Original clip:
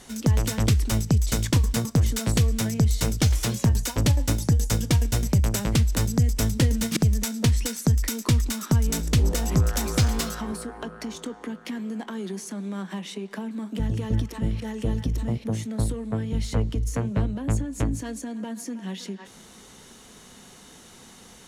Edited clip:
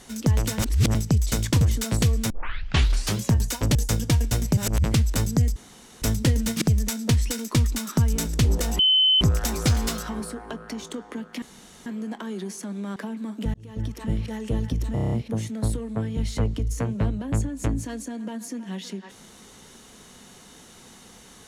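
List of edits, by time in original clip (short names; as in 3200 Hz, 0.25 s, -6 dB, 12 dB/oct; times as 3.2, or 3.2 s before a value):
0.59–0.95 reverse
1.61–1.96 cut
2.65 tape start 0.92 s
4.1–4.56 cut
5.38–5.65 reverse
6.37 insert room tone 0.46 s
7.74–8.13 cut
9.53 add tone 3050 Hz -15 dBFS 0.42 s
11.74 insert room tone 0.44 s
12.84–13.3 cut
13.88–14.41 fade in
15.28 stutter 0.03 s, 7 plays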